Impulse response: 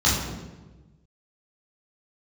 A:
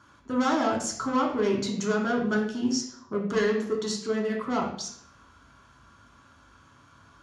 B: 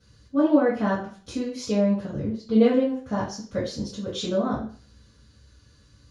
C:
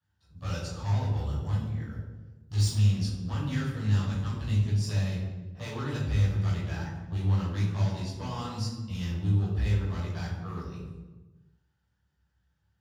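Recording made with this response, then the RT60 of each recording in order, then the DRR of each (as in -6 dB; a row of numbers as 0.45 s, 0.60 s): C; 0.65 s, 0.45 s, 1.2 s; -1.0 dB, -9.5 dB, -8.0 dB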